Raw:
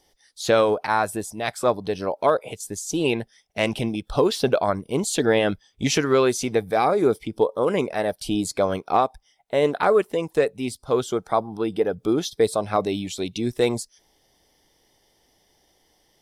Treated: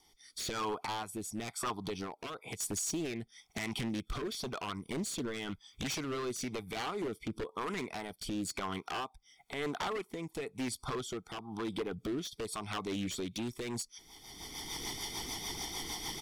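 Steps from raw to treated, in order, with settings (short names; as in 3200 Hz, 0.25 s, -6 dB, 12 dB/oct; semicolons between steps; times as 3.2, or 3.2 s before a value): recorder AGC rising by 27 dB/s; low shelf 240 Hz -8 dB; comb 0.9 ms, depth 88%; compressor 2:1, threshold -35 dBFS, peak gain reduction 12 dB; wavefolder -27 dBFS; rotary speaker horn 1 Hz, later 6.7 Hz, at 13.18; Doppler distortion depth 0.13 ms; gain -1.5 dB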